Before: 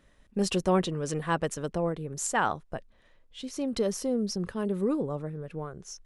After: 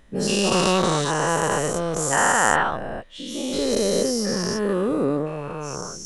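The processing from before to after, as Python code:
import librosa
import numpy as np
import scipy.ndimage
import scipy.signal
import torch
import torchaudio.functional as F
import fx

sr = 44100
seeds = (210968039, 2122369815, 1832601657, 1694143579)

y = fx.spec_dilate(x, sr, span_ms=480)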